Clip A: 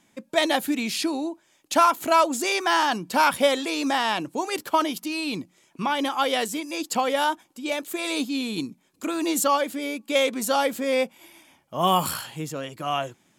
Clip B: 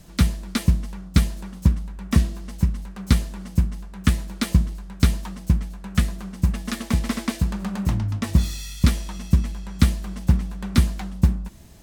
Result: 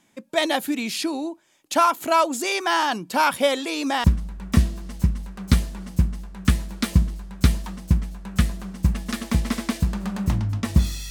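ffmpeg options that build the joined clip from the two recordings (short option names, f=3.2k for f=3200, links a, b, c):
-filter_complex "[0:a]apad=whole_dur=11.1,atrim=end=11.1,atrim=end=4.042[a];[1:a]atrim=start=1.628:end=8.69[b];[a][b]acrossfade=d=0.004:c1=hsin:c2=hsin"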